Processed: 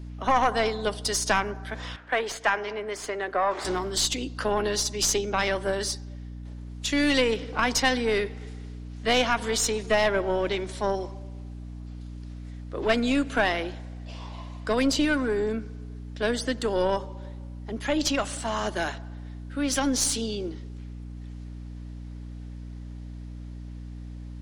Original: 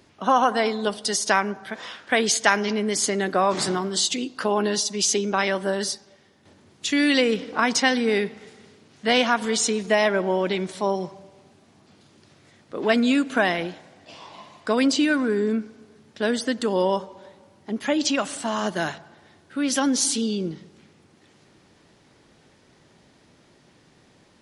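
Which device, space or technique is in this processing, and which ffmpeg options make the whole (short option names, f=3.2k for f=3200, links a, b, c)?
valve amplifier with mains hum: -filter_complex "[0:a]highpass=f=250:w=0.5412,highpass=f=250:w=1.3066,aeval=exprs='(tanh(3.98*val(0)+0.5)-tanh(0.5))/3.98':c=same,aeval=exprs='val(0)+0.0141*(sin(2*PI*60*n/s)+sin(2*PI*2*60*n/s)/2+sin(2*PI*3*60*n/s)/3+sin(2*PI*4*60*n/s)/4+sin(2*PI*5*60*n/s)/5)':c=same,asettb=1/sr,asplit=3[a][b][c];[a]atrim=end=1.964[d];[b]atrim=start=1.96:end=3.65,asetpts=PTS-STARTPTS,afade=t=in:d=0.004:c=qsin,afade=t=out:st=1.686:d=0.004:c=qsin,acrossover=split=380 2600:gain=0.2 1 0.2[e][f][g];[e][f][g]amix=inputs=3:normalize=0[h];[c]atrim=start=3.646[i];[d][h]acrossfade=d=0.004:c1=hsin:c2=qsin[j];[j][i]acrossfade=d=0.004:c1=qsin:c2=hsin"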